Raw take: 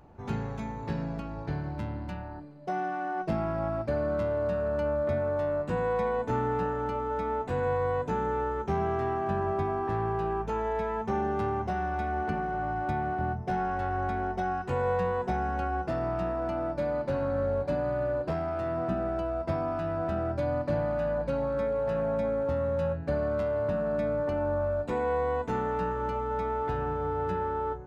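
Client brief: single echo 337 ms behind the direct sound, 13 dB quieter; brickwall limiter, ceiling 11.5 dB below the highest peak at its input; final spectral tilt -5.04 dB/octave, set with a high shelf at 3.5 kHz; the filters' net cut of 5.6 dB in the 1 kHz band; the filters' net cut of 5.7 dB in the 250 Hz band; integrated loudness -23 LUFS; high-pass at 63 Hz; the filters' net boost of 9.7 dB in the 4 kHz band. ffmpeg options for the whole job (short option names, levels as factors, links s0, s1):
-af "highpass=63,equalizer=f=250:t=o:g=-8,equalizer=f=1000:t=o:g=-8.5,highshelf=f=3500:g=8.5,equalizer=f=4000:t=o:g=7.5,alimiter=level_in=2.37:limit=0.0631:level=0:latency=1,volume=0.422,aecho=1:1:337:0.224,volume=6.31"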